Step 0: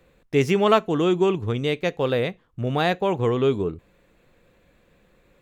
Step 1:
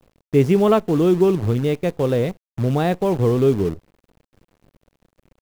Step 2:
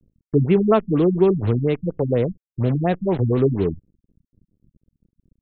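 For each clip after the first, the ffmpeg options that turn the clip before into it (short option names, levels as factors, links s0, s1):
-af "acrusher=bits=6:dc=4:mix=0:aa=0.000001,tiltshelf=f=750:g=7"
-filter_complex "[0:a]acrossover=split=330[s0][s1];[s1]acrusher=bits=5:mix=0:aa=0.000001[s2];[s0][s2]amix=inputs=2:normalize=0,afftfilt=real='re*lt(b*sr/1024,240*pow(4300/240,0.5+0.5*sin(2*PI*4.2*pts/sr)))':imag='im*lt(b*sr/1024,240*pow(4300/240,0.5+0.5*sin(2*PI*4.2*pts/sr)))':win_size=1024:overlap=0.75"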